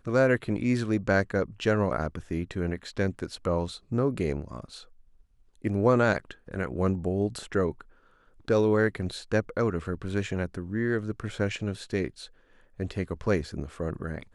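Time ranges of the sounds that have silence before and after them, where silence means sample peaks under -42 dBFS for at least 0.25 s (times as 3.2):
5.64–7.82
8.48–12.26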